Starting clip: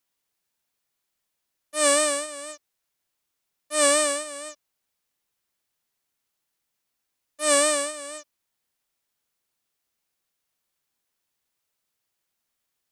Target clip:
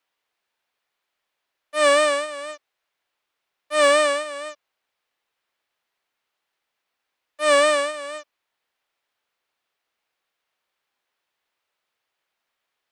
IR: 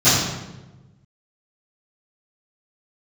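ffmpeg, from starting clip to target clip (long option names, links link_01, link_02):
-filter_complex "[0:a]acontrast=88,acrossover=split=390 3900:gain=0.224 1 0.158[link_01][link_02][link_03];[link_01][link_02][link_03]amix=inputs=3:normalize=0"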